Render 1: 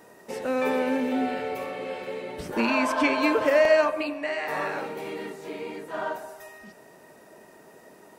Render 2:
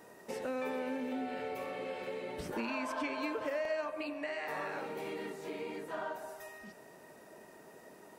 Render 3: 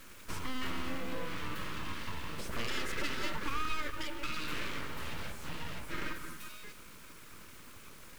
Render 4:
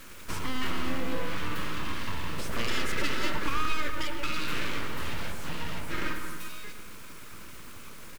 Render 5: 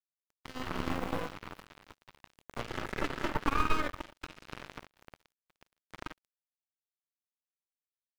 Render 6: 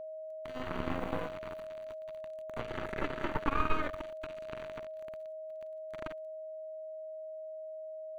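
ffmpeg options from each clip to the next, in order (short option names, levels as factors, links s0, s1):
-af "acompressor=threshold=0.0224:ratio=3,volume=0.631"
-af "aeval=exprs='abs(val(0))':c=same,acrusher=bits=9:mix=0:aa=0.000001,equalizer=f=760:w=2.7:g=-13.5,volume=1.78"
-filter_complex "[0:a]asplit=2[s0][s1];[s1]adelay=114,lowpass=f=2000:p=1,volume=0.398,asplit=2[s2][s3];[s3]adelay=114,lowpass=f=2000:p=1,volume=0.51,asplit=2[s4][s5];[s5]adelay=114,lowpass=f=2000:p=1,volume=0.51,asplit=2[s6][s7];[s7]adelay=114,lowpass=f=2000:p=1,volume=0.51,asplit=2[s8][s9];[s9]adelay=114,lowpass=f=2000:p=1,volume=0.51,asplit=2[s10][s11];[s11]adelay=114,lowpass=f=2000:p=1,volume=0.51[s12];[s0][s2][s4][s6][s8][s10][s12]amix=inputs=7:normalize=0,volume=1.88"
-filter_complex "[0:a]asplit=2[s0][s1];[s1]adelay=44,volume=0.251[s2];[s0][s2]amix=inputs=2:normalize=0,acrossover=split=1300[s3][s4];[s4]acompressor=threshold=0.00562:ratio=8[s5];[s3][s5]amix=inputs=2:normalize=0,acrusher=bits=2:mix=0:aa=0.5"
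-filter_complex "[0:a]acrossover=split=3300[s0][s1];[s1]acompressor=threshold=0.00141:ratio=4:attack=1:release=60[s2];[s0][s2]amix=inputs=2:normalize=0,asuperstop=centerf=5200:order=8:qfactor=7.8,aeval=exprs='val(0)+0.0112*sin(2*PI*630*n/s)':c=same,volume=0.841"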